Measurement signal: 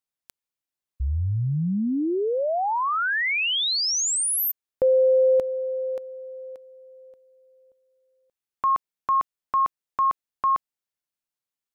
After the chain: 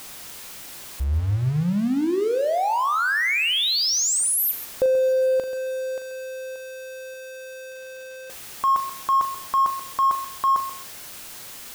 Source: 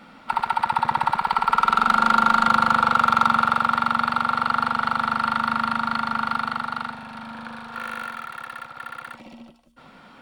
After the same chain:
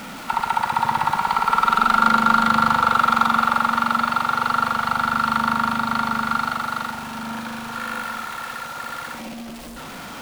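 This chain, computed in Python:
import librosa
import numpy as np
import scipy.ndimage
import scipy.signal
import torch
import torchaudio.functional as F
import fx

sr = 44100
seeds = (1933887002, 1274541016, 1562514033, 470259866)

y = x + 0.5 * 10.0 ** (-31.5 / 20.0) * np.sign(x)
y = fx.room_flutter(y, sr, wall_m=6.8, rt60_s=0.22)
y = fx.echo_crushed(y, sr, ms=134, feedback_pct=35, bits=6, wet_db=-12)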